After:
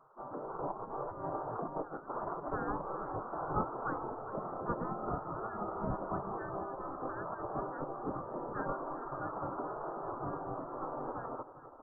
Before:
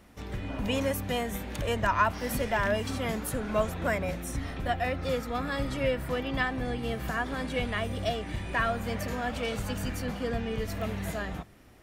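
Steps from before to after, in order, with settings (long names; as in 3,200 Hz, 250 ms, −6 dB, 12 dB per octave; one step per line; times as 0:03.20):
0:00.71–0:02.50: compressor whose output falls as the input rises −32 dBFS, ratio −0.5
Butterworth low-pass 1,300 Hz 72 dB per octave
on a send: repeating echo 403 ms, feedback 42%, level −14.5 dB
on the sum: gate on every frequency bin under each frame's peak −15 dB weak
level +6 dB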